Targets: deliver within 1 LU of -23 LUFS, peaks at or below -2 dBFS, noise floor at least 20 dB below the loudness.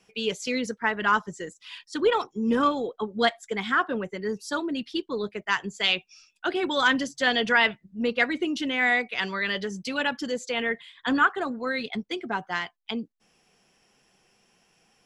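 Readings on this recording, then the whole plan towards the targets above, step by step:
loudness -26.5 LUFS; peak level -7.0 dBFS; loudness target -23.0 LUFS
-> trim +3.5 dB

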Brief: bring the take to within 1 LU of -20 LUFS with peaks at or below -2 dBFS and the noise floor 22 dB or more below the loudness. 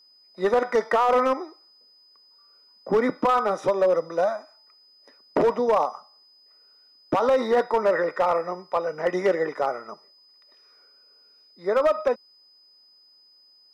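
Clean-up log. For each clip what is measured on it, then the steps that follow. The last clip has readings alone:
clipped samples 1.0%; clipping level -14.5 dBFS; steady tone 5 kHz; tone level -54 dBFS; loudness -23.5 LUFS; peak level -14.5 dBFS; loudness target -20.0 LUFS
-> clip repair -14.5 dBFS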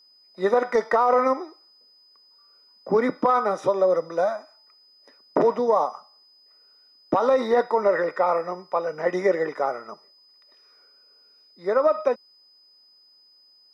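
clipped samples 0.0%; steady tone 5 kHz; tone level -54 dBFS
-> band-stop 5 kHz, Q 30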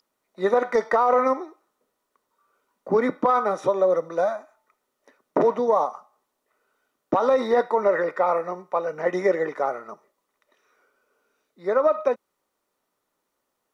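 steady tone not found; loudness -23.0 LUFS; peak level -7.0 dBFS; loudness target -20.0 LUFS
-> trim +3 dB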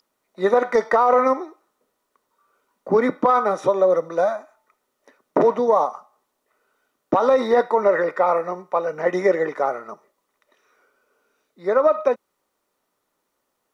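loudness -20.0 LUFS; peak level -4.0 dBFS; noise floor -75 dBFS

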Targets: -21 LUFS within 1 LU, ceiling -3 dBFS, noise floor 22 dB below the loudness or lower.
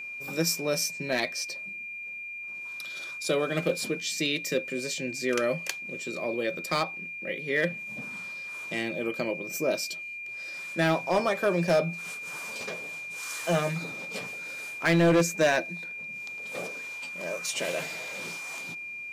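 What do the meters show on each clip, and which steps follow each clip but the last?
clipped samples 0.5%; clipping level -16.5 dBFS; steady tone 2.4 kHz; tone level -36 dBFS; loudness -29.5 LUFS; peak level -16.5 dBFS; loudness target -21.0 LUFS
-> clip repair -16.5 dBFS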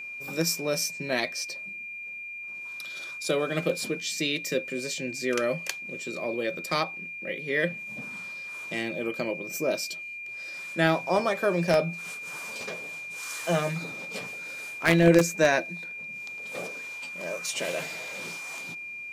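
clipped samples 0.0%; steady tone 2.4 kHz; tone level -36 dBFS
-> band-stop 2.4 kHz, Q 30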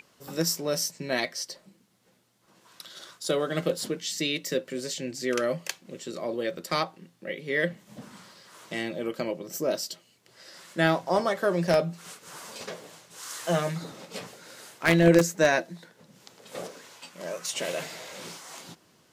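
steady tone not found; loudness -28.0 LUFS; peak level -7.0 dBFS; loudness target -21.0 LUFS
-> trim +7 dB; peak limiter -3 dBFS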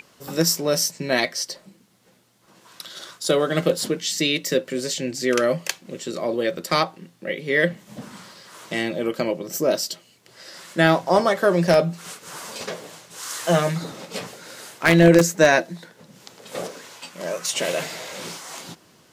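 loudness -21.5 LUFS; peak level -3.0 dBFS; noise floor -56 dBFS

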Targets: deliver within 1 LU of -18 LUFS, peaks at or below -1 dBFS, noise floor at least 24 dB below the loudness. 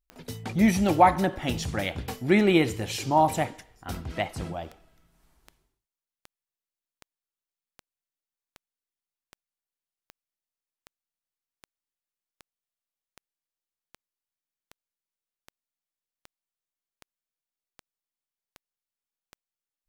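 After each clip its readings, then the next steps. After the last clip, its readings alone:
clicks found 26; loudness -25.0 LUFS; peak level -5.0 dBFS; loudness target -18.0 LUFS
-> de-click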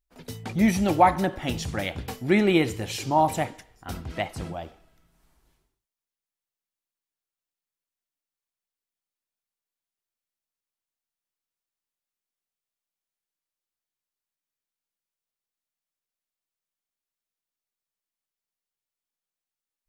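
clicks found 0; loudness -24.5 LUFS; peak level -5.0 dBFS; loudness target -18.0 LUFS
-> trim +6.5 dB; peak limiter -1 dBFS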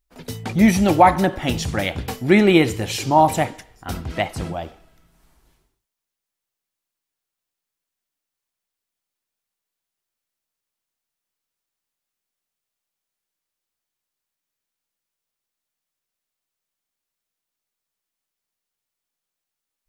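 loudness -18.5 LUFS; peak level -1.0 dBFS; noise floor -85 dBFS

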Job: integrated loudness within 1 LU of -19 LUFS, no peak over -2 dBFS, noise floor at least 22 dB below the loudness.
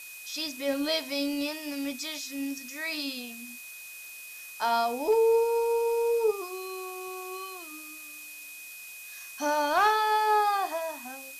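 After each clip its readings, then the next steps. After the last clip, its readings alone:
steady tone 2.5 kHz; tone level -44 dBFS; noise floor -44 dBFS; noise floor target -51 dBFS; loudness -28.5 LUFS; peak level -14.5 dBFS; loudness target -19.0 LUFS
-> band-stop 2.5 kHz, Q 30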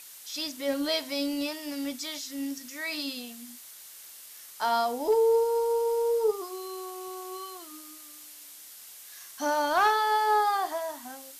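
steady tone not found; noise floor -48 dBFS; noise floor target -51 dBFS
-> noise reduction 6 dB, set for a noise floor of -48 dBFS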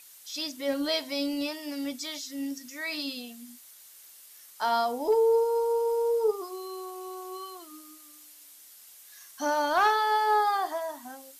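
noise floor -52 dBFS; loudness -28.5 LUFS; peak level -14.5 dBFS; loudness target -19.0 LUFS
-> trim +9.5 dB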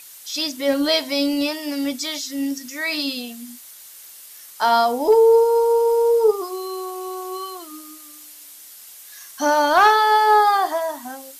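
loudness -19.0 LUFS; peak level -5.0 dBFS; noise floor -43 dBFS

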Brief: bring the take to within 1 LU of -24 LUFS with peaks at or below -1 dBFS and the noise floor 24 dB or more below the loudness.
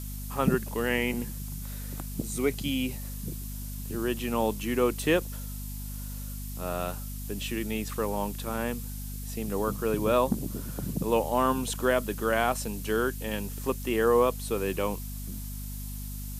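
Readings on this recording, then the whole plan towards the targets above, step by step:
hum 50 Hz; highest harmonic 250 Hz; hum level -35 dBFS; noise floor -37 dBFS; noise floor target -54 dBFS; loudness -30.0 LUFS; peak level -10.0 dBFS; loudness target -24.0 LUFS
-> hum notches 50/100/150/200/250 Hz; noise reduction 17 dB, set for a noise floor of -37 dBFS; trim +6 dB

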